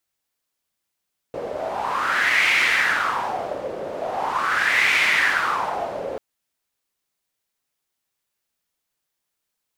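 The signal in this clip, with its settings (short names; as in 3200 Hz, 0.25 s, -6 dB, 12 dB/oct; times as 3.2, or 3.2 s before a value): wind-like swept noise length 4.84 s, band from 520 Hz, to 2200 Hz, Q 4.9, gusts 2, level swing 11.5 dB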